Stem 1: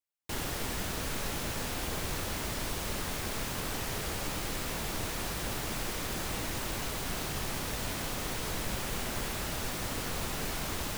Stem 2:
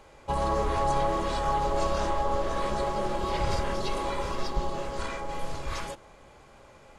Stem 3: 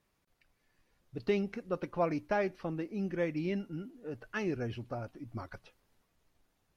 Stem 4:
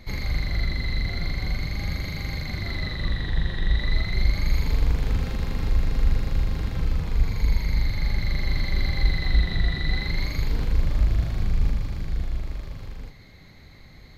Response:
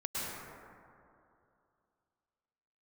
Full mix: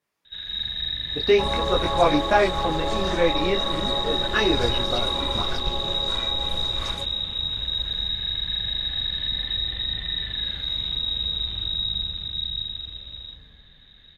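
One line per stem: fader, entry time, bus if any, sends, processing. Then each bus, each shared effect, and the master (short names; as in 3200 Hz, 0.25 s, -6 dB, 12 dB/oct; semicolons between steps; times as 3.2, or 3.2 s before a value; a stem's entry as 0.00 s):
-17.0 dB, 0.70 s, bus A, send -6 dB, running mean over 8 samples
-3.5 dB, 1.10 s, no bus, send -19.5 dB, dry
+2.0 dB, 0.00 s, no bus, no send, HPF 390 Hz 6 dB/oct; AGC gain up to 12 dB; detuned doubles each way 16 cents
-10.5 dB, 0.25 s, bus A, send -12 dB, dry
bus A: 0.0 dB, inverted band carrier 3800 Hz; limiter -22.5 dBFS, peak gain reduction 7.5 dB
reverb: on, RT60 2.6 s, pre-delay 98 ms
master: AGC gain up to 3.5 dB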